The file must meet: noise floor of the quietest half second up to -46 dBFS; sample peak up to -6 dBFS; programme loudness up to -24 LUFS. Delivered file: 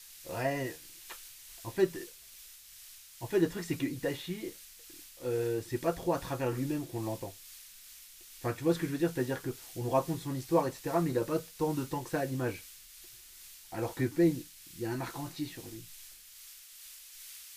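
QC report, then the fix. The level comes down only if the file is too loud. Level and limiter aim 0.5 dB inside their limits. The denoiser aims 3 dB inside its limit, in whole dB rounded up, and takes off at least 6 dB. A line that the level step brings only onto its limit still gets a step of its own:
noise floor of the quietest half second -53 dBFS: OK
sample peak -15.0 dBFS: OK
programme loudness -34.0 LUFS: OK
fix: none

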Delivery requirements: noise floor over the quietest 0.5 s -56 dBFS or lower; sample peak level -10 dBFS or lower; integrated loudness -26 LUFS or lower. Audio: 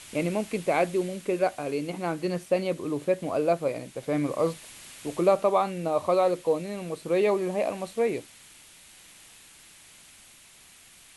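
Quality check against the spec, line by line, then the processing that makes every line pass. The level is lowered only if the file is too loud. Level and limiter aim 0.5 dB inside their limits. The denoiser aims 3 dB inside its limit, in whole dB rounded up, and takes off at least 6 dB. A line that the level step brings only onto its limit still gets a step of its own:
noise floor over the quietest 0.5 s -53 dBFS: fail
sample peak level -9.5 dBFS: fail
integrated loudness -27.5 LUFS: OK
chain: denoiser 6 dB, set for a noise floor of -53 dBFS; limiter -10.5 dBFS

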